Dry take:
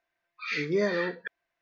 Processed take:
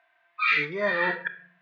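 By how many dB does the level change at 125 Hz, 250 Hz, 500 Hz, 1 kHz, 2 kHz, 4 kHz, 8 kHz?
-3.5 dB, -5.0 dB, -1.5 dB, +11.0 dB, +8.5 dB, +4.5 dB, no reading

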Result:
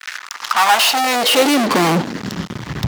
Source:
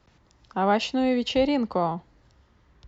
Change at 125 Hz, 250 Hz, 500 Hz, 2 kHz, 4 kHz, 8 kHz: +13.5 dB, +6.5 dB, +6.5 dB, +17.5 dB, +17.0 dB, no reading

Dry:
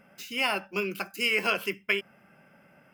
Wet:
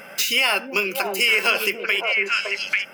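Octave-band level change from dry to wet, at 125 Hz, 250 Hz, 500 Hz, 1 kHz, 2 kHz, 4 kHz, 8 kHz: no reading, +2.5 dB, +6.5 dB, +7.5 dB, +10.0 dB, +11.0 dB, +15.5 dB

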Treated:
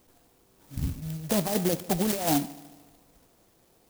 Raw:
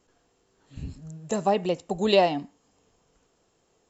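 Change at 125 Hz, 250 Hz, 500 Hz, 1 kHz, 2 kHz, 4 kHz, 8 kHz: +4.5 dB, +2.0 dB, -6.5 dB, -6.0 dB, -4.0 dB, -4.0 dB, no reading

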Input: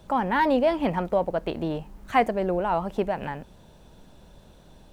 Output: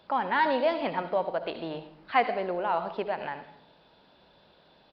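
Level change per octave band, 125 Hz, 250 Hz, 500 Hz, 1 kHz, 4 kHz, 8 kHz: -12.0 dB, -9.0 dB, -4.0 dB, -2.0 dB, +0.5 dB, no reading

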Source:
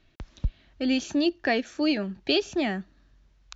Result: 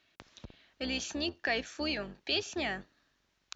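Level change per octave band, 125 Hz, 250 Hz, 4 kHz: no reading, -13.0 dB, -4.0 dB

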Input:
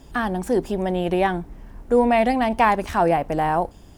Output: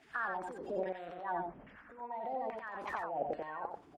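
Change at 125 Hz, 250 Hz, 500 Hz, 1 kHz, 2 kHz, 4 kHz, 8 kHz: -27.0 dB, -25.5 dB, -18.5 dB, -17.5 dB, -14.5 dB, -24.5 dB, no reading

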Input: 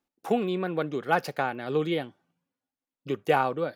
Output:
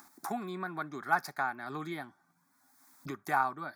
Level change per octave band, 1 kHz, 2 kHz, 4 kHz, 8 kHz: -3.5 dB, -2.0 dB, -11.0 dB, +0.5 dB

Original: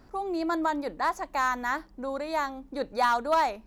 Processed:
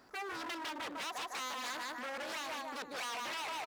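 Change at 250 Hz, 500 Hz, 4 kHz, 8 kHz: -16.0 dB, -15.0 dB, +0.5 dB, +1.0 dB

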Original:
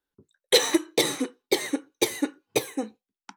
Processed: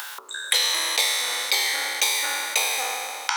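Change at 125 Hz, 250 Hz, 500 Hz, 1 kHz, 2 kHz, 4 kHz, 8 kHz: under -30 dB, -23.0 dB, -10.5 dB, +7.0 dB, +8.5 dB, +6.5 dB, +7.0 dB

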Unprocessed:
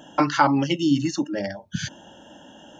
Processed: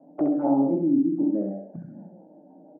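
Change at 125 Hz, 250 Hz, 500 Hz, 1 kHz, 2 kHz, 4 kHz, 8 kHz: -8.0 dB, +1.0 dB, -0.5 dB, -11.5 dB, under -30 dB, under -40 dB, no reading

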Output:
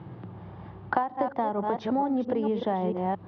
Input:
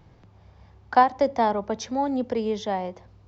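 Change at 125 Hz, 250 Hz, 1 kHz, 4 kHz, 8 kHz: +5.0 dB, 0.0 dB, -5.5 dB, -9.0 dB, no reading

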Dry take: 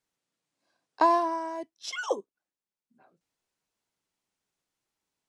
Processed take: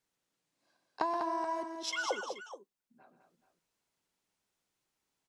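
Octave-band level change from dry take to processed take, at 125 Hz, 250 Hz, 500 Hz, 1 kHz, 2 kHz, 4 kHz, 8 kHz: no reading, -7.0 dB, -7.5 dB, -8.0 dB, -2.0 dB, 0.0 dB, 0.0 dB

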